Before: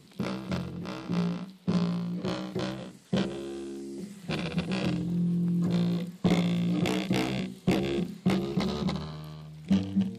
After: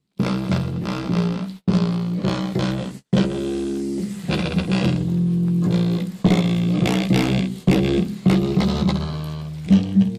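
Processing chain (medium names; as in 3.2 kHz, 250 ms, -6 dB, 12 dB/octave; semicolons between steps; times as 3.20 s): gate -48 dBFS, range -34 dB; bass shelf 140 Hz +7 dB; in parallel at +2 dB: compression, threshold -34 dBFS, peak gain reduction 15.5 dB; on the sum: doubling 15 ms -9.5 dB; trim +4.5 dB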